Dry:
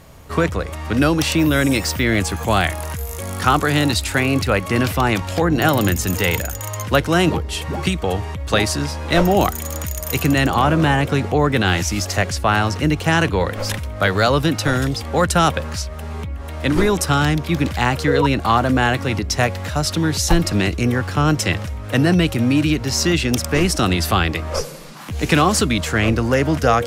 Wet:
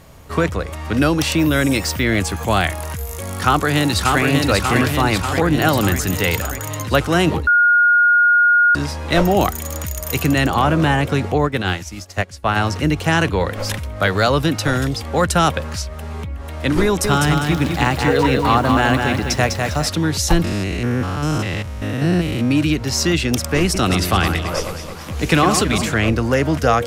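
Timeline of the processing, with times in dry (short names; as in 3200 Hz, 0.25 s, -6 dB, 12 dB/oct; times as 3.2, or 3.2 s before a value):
3.16–4.22 echo throw 0.59 s, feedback 65%, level -2.5 dB
7.47–8.75 bleep 1430 Hz -9.5 dBFS
11.38–12.56 upward expander 2.5:1, over -27 dBFS
16.84–19.89 lo-fi delay 0.201 s, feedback 35%, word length 7-bit, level -4 dB
20.44–22.51 stepped spectrum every 0.2 s
23.63–25.94 echo with dull and thin repeats by turns 0.109 s, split 2400 Hz, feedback 72%, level -6.5 dB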